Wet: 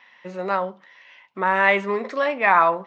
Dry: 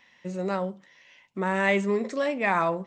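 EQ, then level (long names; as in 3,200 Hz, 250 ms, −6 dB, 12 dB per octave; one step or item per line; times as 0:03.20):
high-frequency loss of the air 290 metres
RIAA equalisation recording
parametric band 1,100 Hz +7.5 dB 1.5 octaves
+4.0 dB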